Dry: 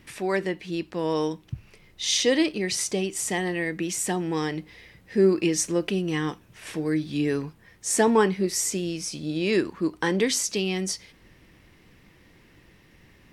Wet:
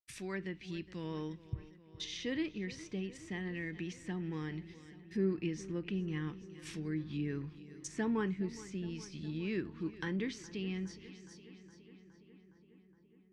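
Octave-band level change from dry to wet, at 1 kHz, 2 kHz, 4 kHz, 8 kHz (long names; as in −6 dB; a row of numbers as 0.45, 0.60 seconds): −19.0, −13.5, −17.5, −24.5 decibels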